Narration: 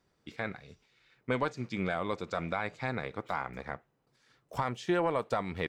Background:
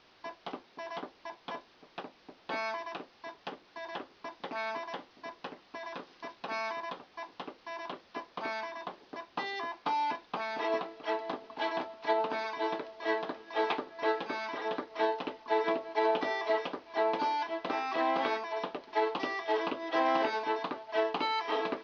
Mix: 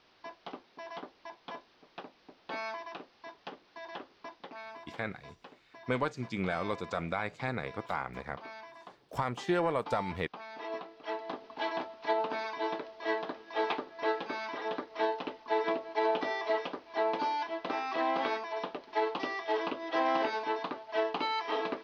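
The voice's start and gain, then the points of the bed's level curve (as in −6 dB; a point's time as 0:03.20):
4.60 s, −0.5 dB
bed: 0:04.30 −3 dB
0:04.62 −10 dB
0:10.43 −10 dB
0:11.47 −1 dB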